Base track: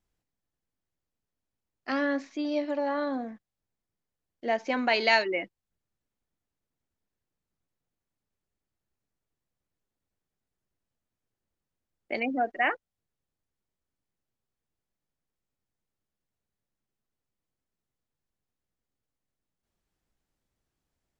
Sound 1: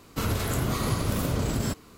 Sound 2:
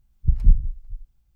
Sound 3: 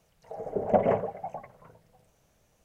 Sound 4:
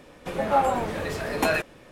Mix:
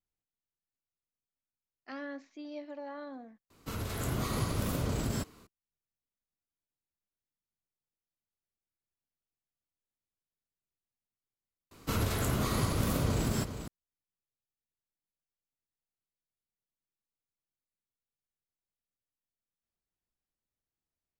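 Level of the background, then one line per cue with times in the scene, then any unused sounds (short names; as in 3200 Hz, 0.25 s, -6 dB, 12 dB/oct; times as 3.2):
base track -13.5 dB
3.5 replace with 1 -11 dB + AGC gain up to 5.5 dB
11.71 replace with 1 -3.5 dB + echo 0.403 s -10.5 dB
not used: 2, 3, 4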